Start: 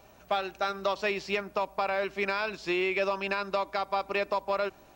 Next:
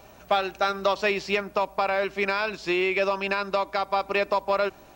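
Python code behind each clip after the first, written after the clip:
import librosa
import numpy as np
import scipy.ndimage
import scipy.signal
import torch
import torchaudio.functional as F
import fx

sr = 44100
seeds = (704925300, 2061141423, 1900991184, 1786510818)

y = fx.rider(x, sr, range_db=10, speed_s=2.0)
y = y * 10.0 ** (4.5 / 20.0)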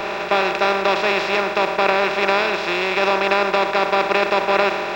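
y = fx.bin_compress(x, sr, power=0.2)
y = fx.band_widen(y, sr, depth_pct=70)
y = y * 10.0 ** (-1.0 / 20.0)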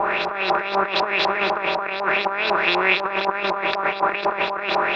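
y = fx.over_compress(x, sr, threshold_db=-21.0, ratio=-0.5)
y = fx.filter_lfo_lowpass(y, sr, shape='saw_up', hz=4.0, low_hz=820.0, high_hz=4900.0, q=3.7)
y = y * 10.0 ** (-3.5 / 20.0)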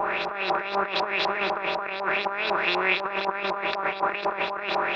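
y = fx.wow_flutter(x, sr, seeds[0], rate_hz=2.1, depth_cents=15.0)
y = y * 10.0 ** (-5.0 / 20.0)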